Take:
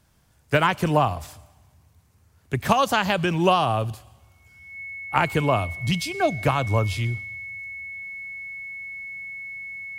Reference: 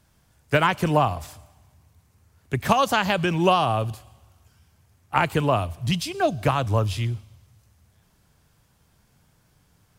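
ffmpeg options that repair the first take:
-af "bandreject=f=2.2k:w=30"

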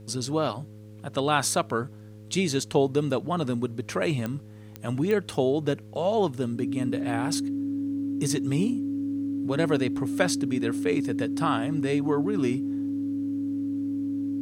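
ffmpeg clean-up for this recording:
-af "adeclick=t=4,bandreject=f=105.9:t=h:w=4,bandreject=f=211.8:t=h:w=4,bandreject=f=317.7:t=h:w=4,bandreject=f=423.6:t=h:w=4,bandreject=f=529.5:t=h:w=4,bandreject=f=280:w=30,agate=range=-21dB:threshold=-36dB"

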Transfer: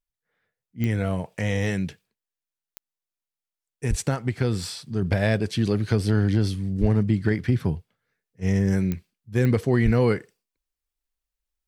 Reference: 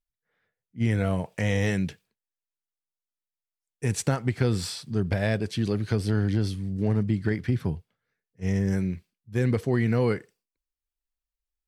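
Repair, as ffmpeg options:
-filter_complex "[0:a]adeclick=t=4,asplit=3[a][b][c];[a]afade=t=out:st=3.89:d=0.02[d];[b]highpass=f=140:w=0.5412,highpass=f=140:w=1.3066,afade=t=in:st=3.89:d=0.02,afade=t=out:st=4.01:d=0.02[e];[c]afade=t=in:st=4.01:d=0.02[f];[d][e][f]amix=inputs=3:normalize=0,asplit=3[g][h][i];[g]afade=t=out:st=6.8:d=0.02[j];[h]highpass=f=140:w=0.5412,highpass=f=140:w=1.3066,afade=t=in:st=6.8:d=0.02,afade=t=out:st=6.92:d=0.02[k];[i]afade=t=in:st=6.92:d=0.02[l];[j][k][l]amix=inputs=3:normalize=0,asplit=3[m][n][o];[m]afade=t=out:st=9.84:d=0.02[p];[n]highpass=f=140:w=0.5412,highpass=f=140:w=1.3066,afade=t=in:st=9.84:d=0.02,afade=t=out:st=9.96:d=0.02[q];[o]afade=t=in:st=9.96:d=0.02[r];[p][q][r]amix=inputs=3:normalize=0,asetnsamples=n=441:p=0,asendcmd='5.02 volume volume -3.5dB',volume=0dB"

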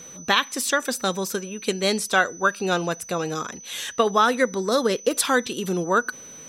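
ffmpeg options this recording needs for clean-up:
-af "bandreject=f=6k:w=30"

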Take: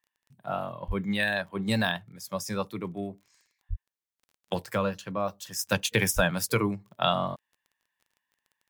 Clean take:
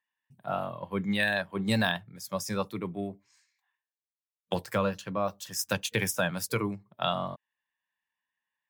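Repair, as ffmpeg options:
-filter_complex "[0:a]adeclick=t=4,asplit=3[a][b][c];[a]afade=t=out:st=0.87:d=0.02[d];[b]highpass=f=140:w=0.5412,highpass=f=140:w=1.3066,afade=t=in:st=0.87:d=0.02,afade=t=out:st=0.99:d=0.02[e];[c]afade=t=in:st=0.99:d=0.02[f];[d][e][f]amix=inputs=3:normalize=0,asplit=3[g][h][i];[g]afade=t=out:st=3.69:d=0.02[j];[h]highpass=f=140:w=0.5412,highpass=f=140:w=1.3066,afade=t=in:st=3.69:d=0.02,afade=t=out:st=3.81:d=0.02[k];[i]afade=t=in:st=3.81:d=0.02[l];[j][k][l]amix=inputs=3:normalize=0,asplit=3[m][n][o];[m]afade=t=out:st=6.15:d=0.02[p];[n]highpass=f=140:w=0.5412,highpass=f=140:w=1.3066,afade=t=in:st=6.15:d=0.02,afade=t=out:st=6.27:d=0.02[q];[o]afade=t=in:st=6.27:d=0.02[r];[p][q][r]amix=inputs=3:normalize=0,asetnsamples=n=441:p=0,asendcmd='5.72 volume volume -4dB',volume=0dB"

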